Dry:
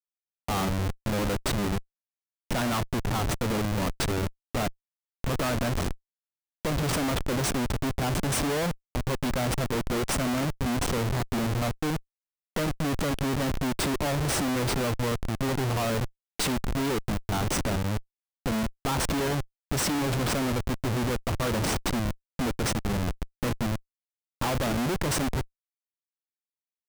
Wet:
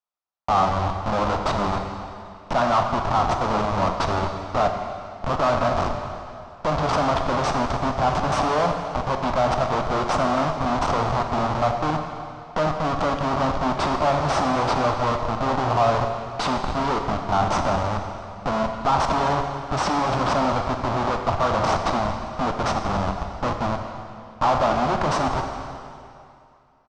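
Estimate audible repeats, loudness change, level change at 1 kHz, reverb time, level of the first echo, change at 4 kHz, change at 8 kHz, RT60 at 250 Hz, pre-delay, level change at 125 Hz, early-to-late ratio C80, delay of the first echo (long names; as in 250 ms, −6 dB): 1, +5.5 dB, +13.0 dB, 2.5 s, −20.0 dB, +1.0 dB, −6.0 dB, 2.5 s, 11 ms, +1.0 dB, 6.0 dB, 271 ms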